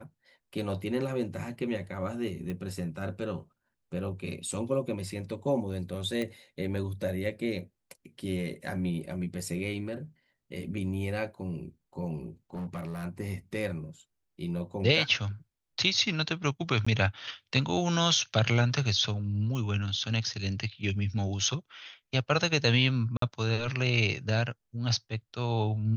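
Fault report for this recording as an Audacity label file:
2.500000	2.500000	click −25 dBFS
6.220000	6.220000	click −20 dBFS
12.540000	13.040000	clipping −32 dBFS
16.850000	16.860000	drop-out 15 ms
19.550000	19.550000	click −24 dBFS
23.170000	23.220000	drop-out 53 ms

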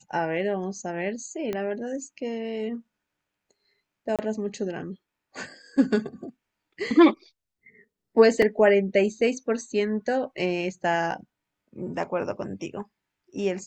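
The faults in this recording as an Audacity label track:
1.530000	1.530000	click −17 dBFS
4.160000	4.190000	drop-out 27 ms
8.420000	8.420000	drop-out 3.6 ms
11.110000	11.110000	drop-out 3.3 ms

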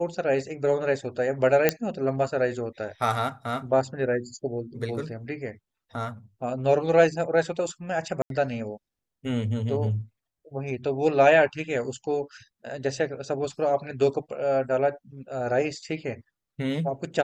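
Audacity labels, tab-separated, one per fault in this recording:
1.690000	1.690000	click −4 dBFS
8.220000	8.300000	drop-out 82 ms

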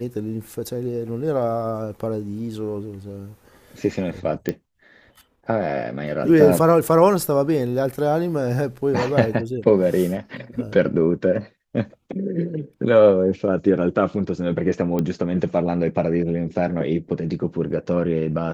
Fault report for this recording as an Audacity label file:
4.490000	4.490000	click −11 dBFS
14.990000	14.990000	click −12 dBFS

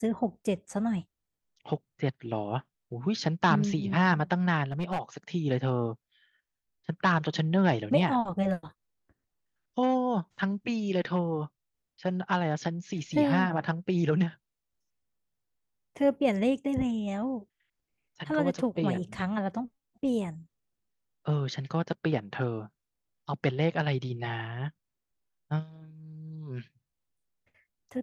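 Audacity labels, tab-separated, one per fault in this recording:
4.710000	4.990000	clipping −26 dBFS

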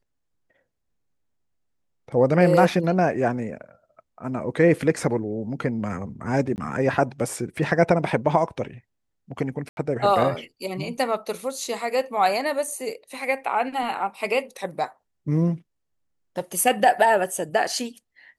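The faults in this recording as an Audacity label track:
6.560000	6.580000	drop-out 19 ms
7.560000	7.560000	drop-out 2.4 ms
9.690000	9.770000	drop-out 81 ms

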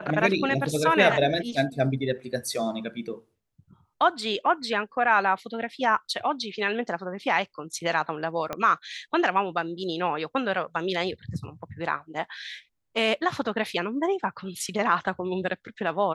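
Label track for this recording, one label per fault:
8.530000	8.530000	click −15 dBFS

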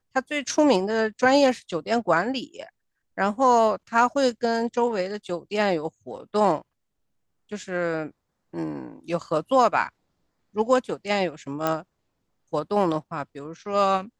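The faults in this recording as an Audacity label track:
11.670000	11.670000	click −10 dBFS

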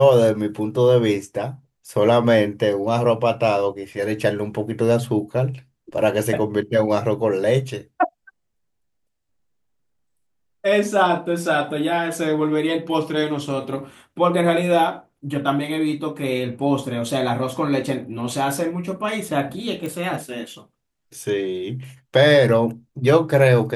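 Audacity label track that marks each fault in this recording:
19.860000	19.860000	click

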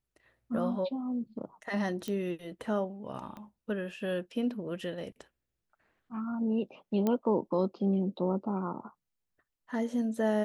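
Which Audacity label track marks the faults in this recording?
2.080000	2.080000	click −22 dBFS
3.370000	3.370000	click −32 dBFS
7.070000	7.070000	click −17 dBFS

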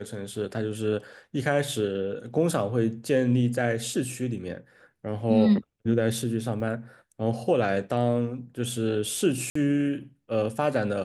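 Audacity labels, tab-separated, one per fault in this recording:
6.600000	6.600000	drop-out 2.2 ms
9.500000	9.550000	drop-out 54 ms

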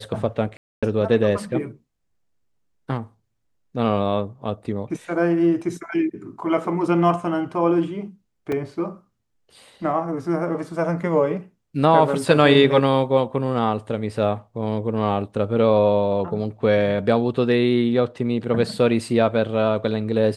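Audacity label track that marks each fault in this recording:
0.570000	0.830000	drop-out 256 ms
8.520000	8.520000	drop-out 3.6 ms

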